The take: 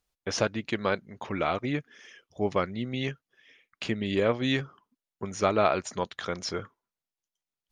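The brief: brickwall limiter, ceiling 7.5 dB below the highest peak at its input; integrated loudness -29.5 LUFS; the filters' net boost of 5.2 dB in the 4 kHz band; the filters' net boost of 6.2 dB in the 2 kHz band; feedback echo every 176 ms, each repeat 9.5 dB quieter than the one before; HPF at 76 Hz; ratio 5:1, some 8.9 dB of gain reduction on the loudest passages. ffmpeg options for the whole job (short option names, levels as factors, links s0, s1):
-af "highpass=76,equalizer=f=2000:t=o:g=6.5,equalizer=f=4000:t=o:g=4.5,acompressor=threshold=0.0447:ratio=5,alimiter=limit=0.0944:level=0:latency=1,aecho=1:1:176|352|528|704:0.335|0.111|0.0365|0.012,volume=1.78"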